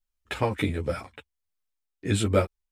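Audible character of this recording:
tremolo triangle 1.4 Hz, depth 45%
a shimmering, thickened sound

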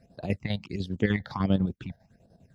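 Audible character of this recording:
chopped level 10 Hz, depth 60%, duty 60%
phaser sweep stages 8, 1.4 Hz, lowest notch 330–2,300 Hz

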